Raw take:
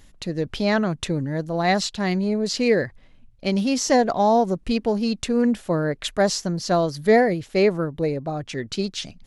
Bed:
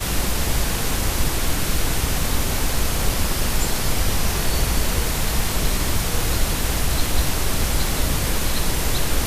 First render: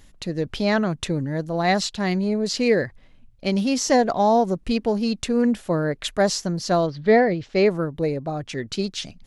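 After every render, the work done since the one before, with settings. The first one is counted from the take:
0:06.86–0:07.64: low-pass filter 3,700 Hz → 6,600 Hz 24 dB per octave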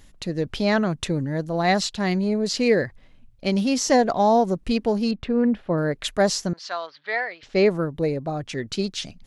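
0:05.11–0:05.78: high-frequency loss of the air 360 metres
0:06.53–0:07.43: flat-topped band-pass 2,100 Hz, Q 0.65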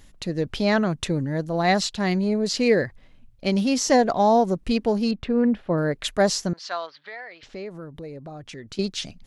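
0:06.99–0:08.79: downward compressor 3 to 1, threshold −38 dBFS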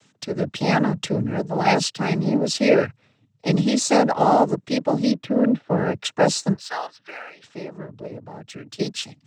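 cochlear-implant simulation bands 12
in parallel at −11 dB: dead-zone distortion −42.5 dBFS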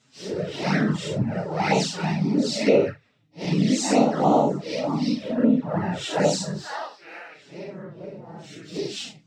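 random phases in long frames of 200 ms
flanger swept by the level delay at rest 8.2 ms, full sweep at −13.5 dBFS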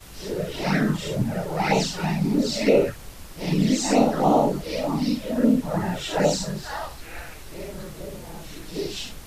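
mix in bed −20.5 dB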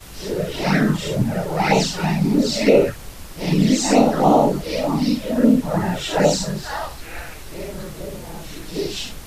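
level +4.5 dB
brickwall limiter −3 dBFS, peak gain reduction 1.5 dB

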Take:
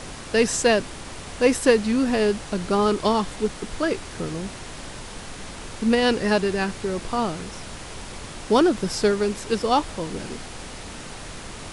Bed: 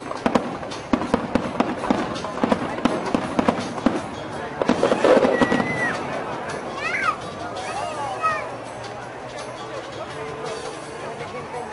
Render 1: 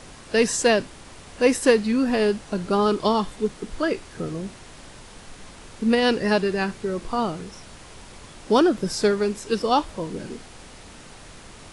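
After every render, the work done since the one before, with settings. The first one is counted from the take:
noise reduction from a noise print 7 dB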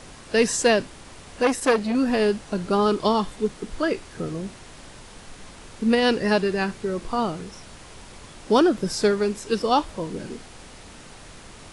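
0:01.43–0:01.95: saturating transformer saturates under 1,400 Hz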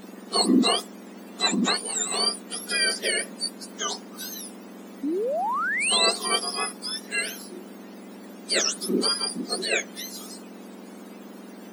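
frequency axis turned over on the octave scale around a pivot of 1,400 Hz
0:05.03–0:06.11: sound drawn into the spectrogram rise 260–5,100 Hz −26 dBFS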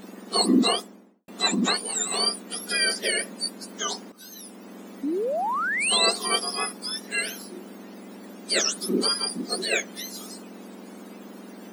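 0:00.64–0:01.28: fade out and dull
0:04.12–0:04.73: fade in, from −15 dB
0:09.40–0:09.99: floating-point word with a short mantissa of 4 bits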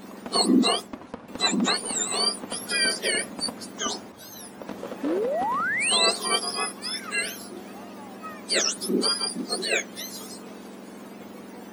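mix in bed −18 dB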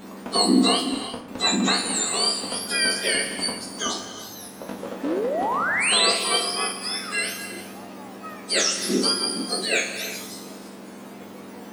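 peak hold with a decay on every bin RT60 0.36 s
reverb whose tail is shaped and stops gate 410 ms flat, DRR 7.5 dB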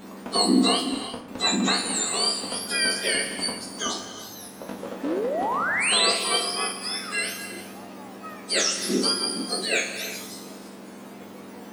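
level −1.5 dB

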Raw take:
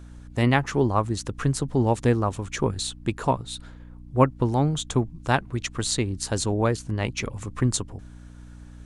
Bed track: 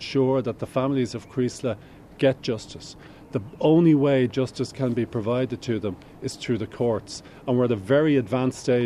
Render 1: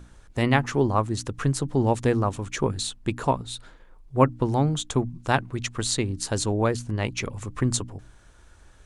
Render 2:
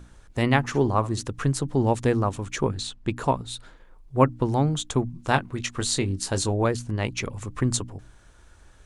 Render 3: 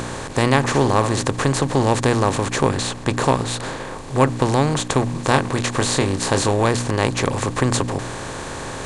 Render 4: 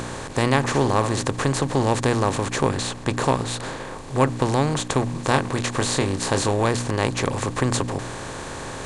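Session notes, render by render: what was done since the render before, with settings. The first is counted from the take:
hum removal 60 Hz, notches 5
0:00.61–0:01.23: flutter between parallel walls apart 10.8 metres, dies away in 0.23 s; 0:02.69–0:03.17: high-frequency loss of the air 57 metres; 0:05.16–0:06.65: double-tracking delay 21 ms −8.5 dB
compressor on every frequency bin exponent 0.4
level −3 dB

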